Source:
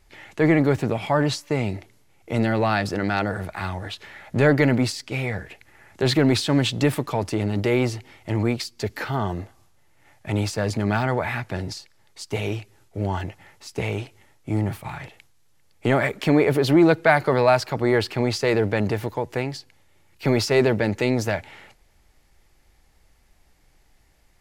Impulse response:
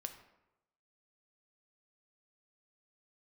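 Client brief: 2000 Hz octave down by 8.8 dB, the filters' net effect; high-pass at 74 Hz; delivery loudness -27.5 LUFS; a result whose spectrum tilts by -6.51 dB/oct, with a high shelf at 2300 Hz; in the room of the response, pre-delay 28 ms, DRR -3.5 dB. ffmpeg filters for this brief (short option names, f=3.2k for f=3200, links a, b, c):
-filter_complex "[0:a]highpass=74,equalizer=f=2k:t=o:g=-7.5,highshelf=f=2.3k:g=-8,asplit=2[a][b];[1:a]atrim=start_sample=2205,adelay=28[c];[b][c]afir=irnorm=-1:irlink=0,volume=6.5dB[d];[a][d]amix=inputs=2:normalize=0,volume=-8.5dB"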